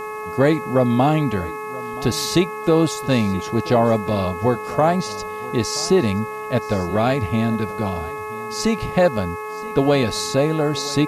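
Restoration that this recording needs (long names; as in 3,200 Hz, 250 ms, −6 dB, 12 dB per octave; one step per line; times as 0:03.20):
hum removal 426.5 Hz, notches 6
notch filter 1,100 Hz, Q 30
downward expander −22 dBFS, range −21 dB
echo removal 977 ms −19.5 dB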